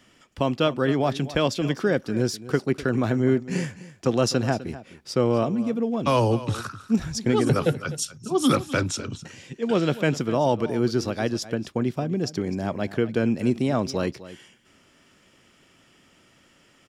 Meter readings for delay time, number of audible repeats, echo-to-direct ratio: 253 ms, 1, −16.0 dB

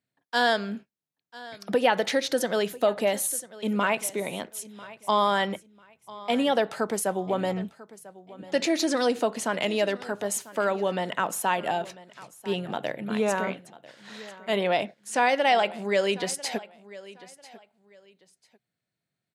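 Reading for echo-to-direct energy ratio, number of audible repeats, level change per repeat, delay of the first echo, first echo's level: −19.0 dB, 2, −12.0 dB, 995 ms, −19.0 dB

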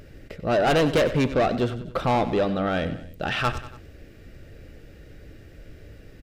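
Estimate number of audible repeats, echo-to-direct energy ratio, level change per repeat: 3, −12.0 dB, −5.5 dB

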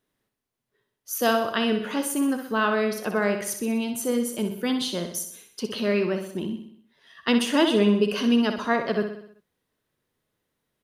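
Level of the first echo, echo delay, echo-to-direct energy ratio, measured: −8.0 dB, 63 ms, −6.5 dB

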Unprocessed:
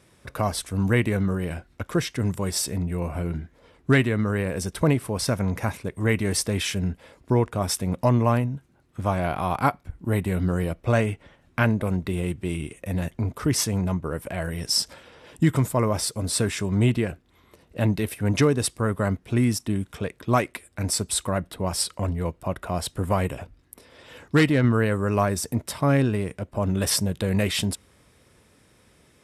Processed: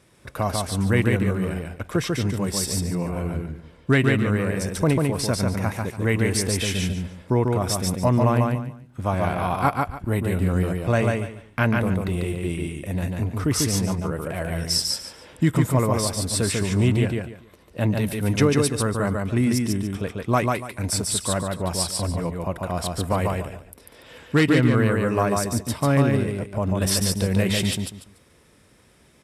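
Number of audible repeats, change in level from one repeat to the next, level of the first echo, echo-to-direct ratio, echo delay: 3, −12.5 dB, −3.0 dB, −2.5 dB, 144 ms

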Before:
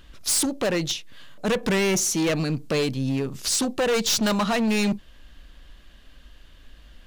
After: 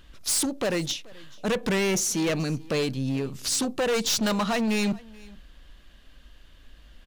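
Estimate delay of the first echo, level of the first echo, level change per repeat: 431 ms, −23.5 dB, repeats not evenly spaced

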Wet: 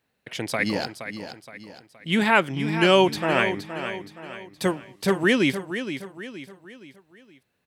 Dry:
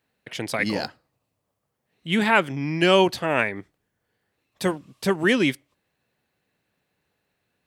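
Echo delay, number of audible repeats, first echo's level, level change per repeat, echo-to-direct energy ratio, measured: 470 ms, 4, −10.0 dB, −7.5 dB, −9.0 dB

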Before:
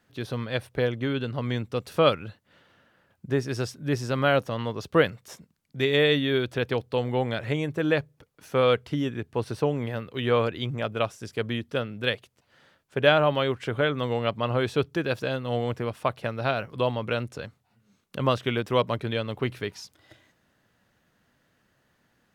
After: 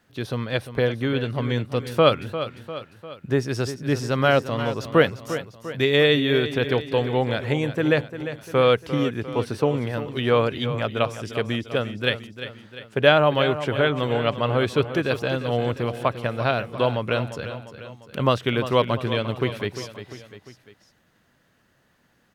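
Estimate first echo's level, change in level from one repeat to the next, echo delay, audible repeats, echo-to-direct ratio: −11.5 dB, −5.5 dB, 349 ms, 3, −10.0 dB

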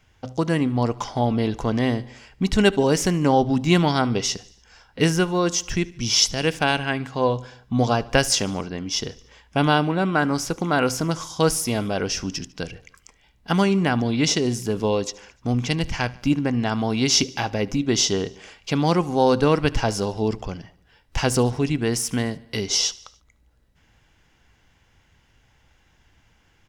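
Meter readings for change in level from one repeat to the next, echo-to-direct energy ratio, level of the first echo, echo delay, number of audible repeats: −4.5 dB, −20.0 dB, −22.0 dB, 74 ms, 3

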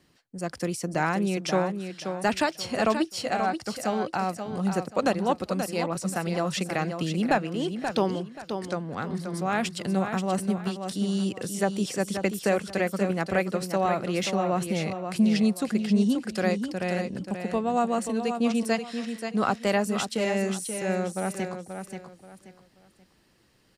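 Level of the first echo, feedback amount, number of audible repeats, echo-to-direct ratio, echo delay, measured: −7.5 dB, 27%, 3, −7.0 dB, 531 ms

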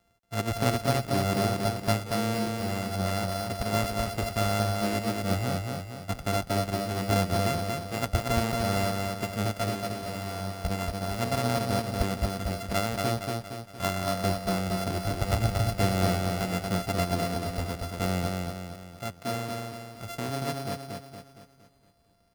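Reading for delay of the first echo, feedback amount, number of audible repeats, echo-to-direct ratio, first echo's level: 232 ms, 48%, 5, −2.5 dB, −3.5 dB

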